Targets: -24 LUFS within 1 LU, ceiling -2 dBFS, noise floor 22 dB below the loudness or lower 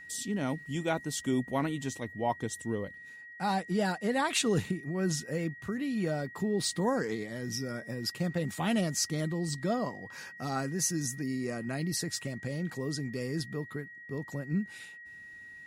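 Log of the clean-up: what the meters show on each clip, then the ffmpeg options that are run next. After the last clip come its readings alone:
steady tone 1.9 kHz; tone level -46 dBFS; loudness -33.0 LUFS; peak level -16.0 dBFS; loudness target -24.0 LUFS
-> -af "bandreject=f=1900:w=30"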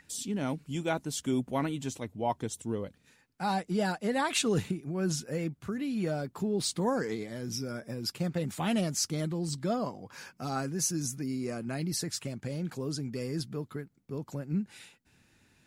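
steady tone not found; loudness -33.0 LUFS; peak level -16.5 dBFS; loudness target -24.0 LUFS
-> -af "volume=2.82"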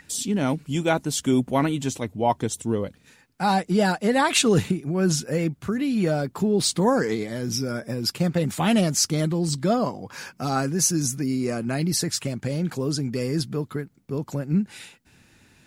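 loudness -24.0 LUFS; peak level -7.5 dBFS; noise floor -58 dBFS

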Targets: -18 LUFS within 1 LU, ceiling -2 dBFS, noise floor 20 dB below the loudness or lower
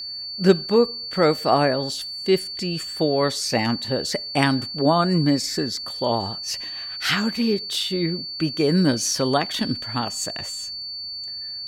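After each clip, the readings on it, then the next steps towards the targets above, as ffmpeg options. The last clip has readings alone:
steady tone 4.5 kHz; tone level -30 dBFS; loudness -22.5 LUFS; peak level -2.0 dBFS; loudness target -18.0 LUFS
-> -af "bandreject=f=4500:w=30"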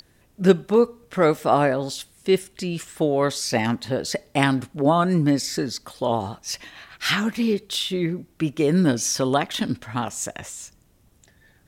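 steady tone not found; loudness -23.0 LUFS; peak level -2.5 dBFS; loudness target -18.0 LUFS
-> -af "volume=1.78,alimiter=limit=0.794:level=0:latency=1"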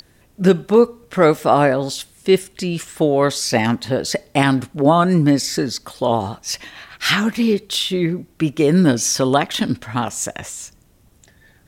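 loudness -18.0 LUFS; peak level -2.0 dBFS; noise floor -54 dBFS

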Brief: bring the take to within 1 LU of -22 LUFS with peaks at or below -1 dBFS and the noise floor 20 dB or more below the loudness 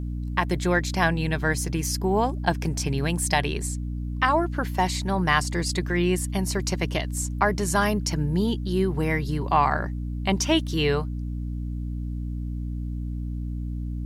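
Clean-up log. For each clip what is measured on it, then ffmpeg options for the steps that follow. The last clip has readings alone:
hum 60 Hz; highest harmonic 300 Hz; hum level -27 dBFS; loudness -25.5 LUFS; peak level -6.0 dBFS; loudness target -22.0 LUFS
-> -af "bandreject=f=60:t=h:w=4,bandreject=f=120:t=h:w=4,bandreject=f=180:t=h:w=4,bandreject=f=240:t=h:w=4,bandreject=f=300:t=h:w=4"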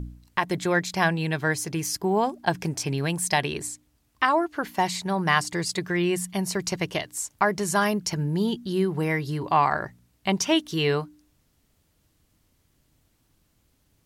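hum not found; loudness -25.5 LUFS; peak level -7.0 dBFS; loudness target -22.0 LUFS
-> -af "volume=1.5"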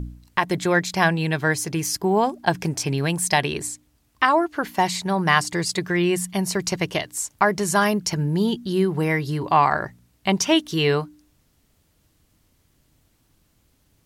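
loudness -22.0 LUFS; peak level -3.5 dBFS; noise floor -64 dBFS

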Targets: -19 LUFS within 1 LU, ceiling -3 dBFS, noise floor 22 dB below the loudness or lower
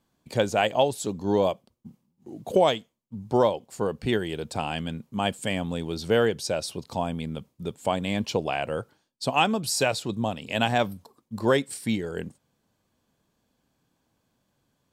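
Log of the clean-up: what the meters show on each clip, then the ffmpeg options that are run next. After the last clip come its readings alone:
loudness -27.0 LUFS; peak level -9.0 dBFS; loudness target -19.0 LUFS
-> -af "volume=2.51,alimiter=limit=0.708:level=0:latency=1"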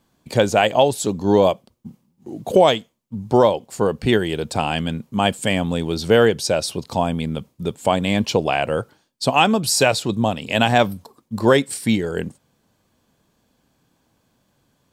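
loudness -19.5 LUFS; peak level -3.0 dBFS; noise floor -67 dBFS

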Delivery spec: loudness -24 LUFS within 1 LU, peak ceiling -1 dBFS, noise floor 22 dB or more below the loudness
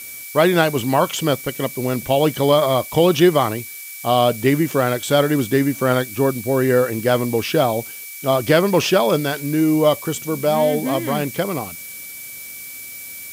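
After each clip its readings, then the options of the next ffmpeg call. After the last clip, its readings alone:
steady tone 2.3 kHz; tone level -38 dBFS; noise floor -35 dBFS; noise floor target -41 dBFS; loudness -18.5 LUFS; peak level -3.0 dBFS; loudness target -24.0 LUFS
-> -af "bandreject=f=2300:w=30"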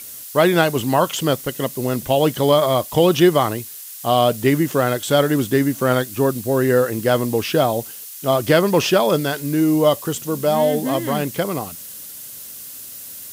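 steady tone not found; noise floor -36 dBFS; noise floor target -41 dBFS
-> -af "afftdn=nr=6:nf=-36"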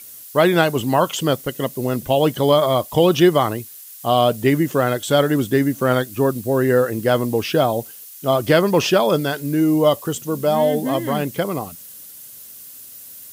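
noise floor -40 dBFS; noise floor target -41 dBFS
-> -af "afftdn=nr=6:nf=-40"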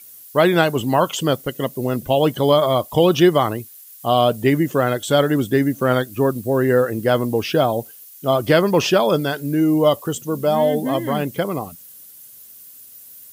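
noise floor -43 dBFS; loudness -18.5 LUFS; peak level -3.5 dBFS; loudness target -24.0 LUFS
-> -af "volume=0.531"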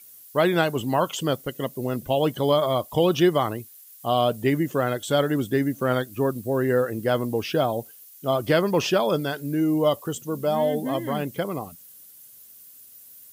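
loudness -24.0 LUFS; peak level -9.0 dBFS; noise floor -48 dBFS

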